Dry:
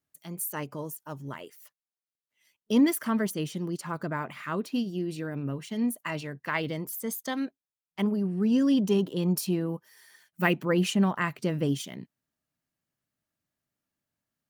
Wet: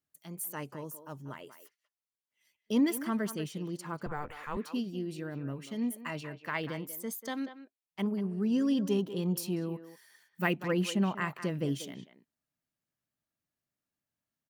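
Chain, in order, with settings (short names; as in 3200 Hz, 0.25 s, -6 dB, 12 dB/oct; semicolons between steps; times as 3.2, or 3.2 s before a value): 4.06–4.57 frequency shift -150 Hz; speakerphone echo 0.19 s, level -11 dB; gain -5 dB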